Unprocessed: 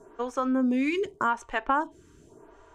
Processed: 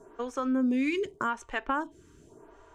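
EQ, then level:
dynamic equaliser 840 Hz, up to −6 dB, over −39 dBFS, Q 1.2
−1.0 dB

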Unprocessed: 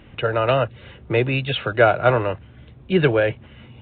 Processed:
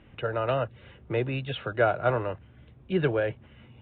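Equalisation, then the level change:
low-pass filter 3,700 Hz 12 dB per octave
dynamic equaliser 2,400 Hz, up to −4 dB, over −38 dBFS, Q 2.2
−8.0 dB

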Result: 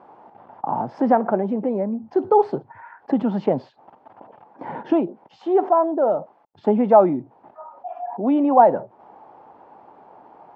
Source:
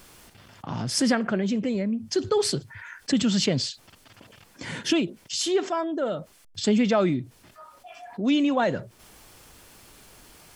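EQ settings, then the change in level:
high-pass filter 240 Hz 12 dB per octave
low-pass with resonance 840 Hz, resonance Q 5.2
high-frequency loss of the air 79 metres
+4.0 dB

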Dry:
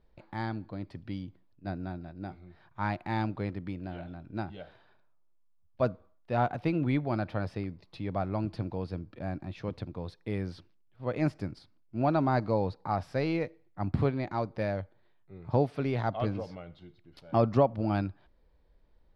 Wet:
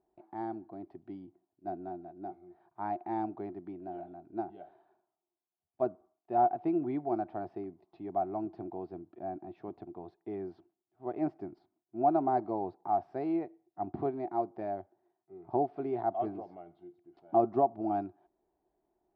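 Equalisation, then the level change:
pair of resonant band-passes 510 Hz, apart 0.95 octaves
+6.0 dB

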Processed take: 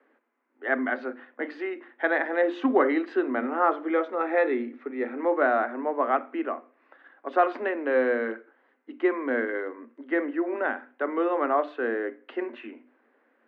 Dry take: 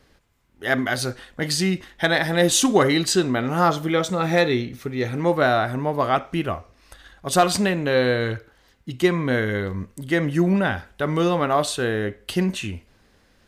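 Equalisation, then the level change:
Chebyshev high-pass filter 230 Hz, order 10
low-pass filter 2,000 Hz 24 dB per octave
mains-hum notches 50/100/150/200/250/300/350 Hz
−3.0 dB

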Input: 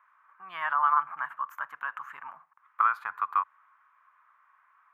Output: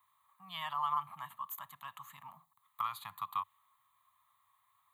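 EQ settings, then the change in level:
phaser with its sweep stopped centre 1,500 Hz, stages 6
dynamic equaliser 2,800 Hz, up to +5 dB, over −54 dBFS, Q 2.4
drawn EQ curve 100 Hz 0 dB, 200 Hz −4 dB, 360 Hz −19 dB, 2,600 Hz −22 dB, 3,800 Hz +4 dB
+13.5 dB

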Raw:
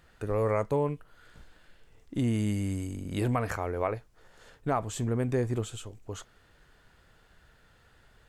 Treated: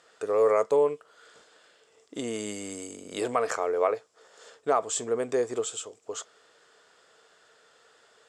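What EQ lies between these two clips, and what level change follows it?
loudspeaker in its box 370–8,700 Hz, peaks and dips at 450 Hz +10 dB, 650 Hz +5 dB, 1,200 Hz +6 dB, 3,400 Hz +4 dB, 5,200 Hz +6 dB, 7,500 Hz +8 dB
high-shelf EQ 6,700 Hz +8 dB
0.0 dB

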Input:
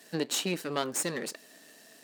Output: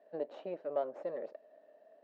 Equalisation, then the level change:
resonant band-pass 600 Hz, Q 7.4
high-frequency loss of the air 220 metres
+7.5 dB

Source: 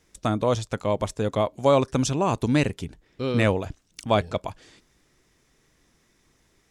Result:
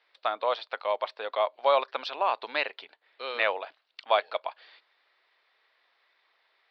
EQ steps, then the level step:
high-pass filter 620 Hz 24 dB per octave
elliptic low-pass filter 4,400 Hz, stop band 40 dB
+1.0 dB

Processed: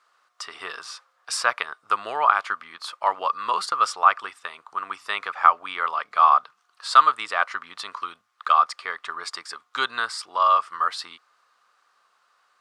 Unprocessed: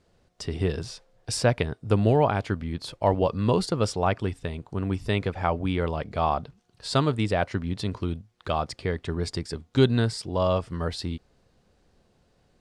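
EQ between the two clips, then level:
high-pass with resonance 1,200 Hz, resonance Q 6.8
+2.0 dB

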